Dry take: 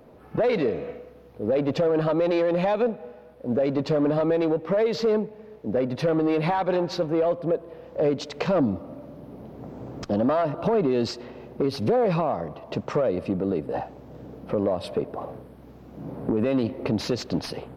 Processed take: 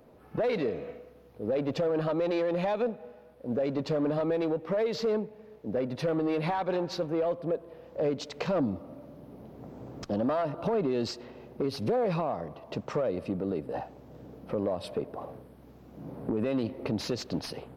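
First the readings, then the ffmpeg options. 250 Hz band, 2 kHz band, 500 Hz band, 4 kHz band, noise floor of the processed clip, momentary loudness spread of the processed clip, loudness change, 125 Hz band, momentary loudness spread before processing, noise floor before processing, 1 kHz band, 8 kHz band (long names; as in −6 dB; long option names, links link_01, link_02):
−6.0 dB, −5.5 dB, −6.0 dB, −4.5 dB, −54 dBFS, 17 LU, −6.0 dB, −6.0 dB, 17 LU, −48 dBFS, −6.0 dB, can't be measured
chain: -af "highshelf=frequency=5200:gain=4.5,volume=-6dB"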